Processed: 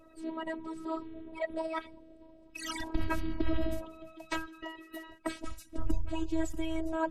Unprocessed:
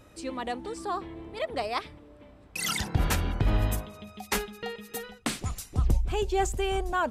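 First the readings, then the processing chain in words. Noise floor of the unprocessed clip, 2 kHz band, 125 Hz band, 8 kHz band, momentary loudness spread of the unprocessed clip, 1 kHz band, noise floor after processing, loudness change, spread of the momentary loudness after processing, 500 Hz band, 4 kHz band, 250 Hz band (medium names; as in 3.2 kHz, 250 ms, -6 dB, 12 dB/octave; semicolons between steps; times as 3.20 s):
-54 dBFS, -7.0 dB, -12.5 dB, -13.5 dB, 11 LU, -8.5 dB, -57 dBFS, -7.0 dB, 13 LU, -6.0 dB, -10.0 dB, +0.5 dB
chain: coarse spectral quantiser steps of 30 dB; robot voice 322 Hz; treble shelf 2.8 kHz -11.5 dB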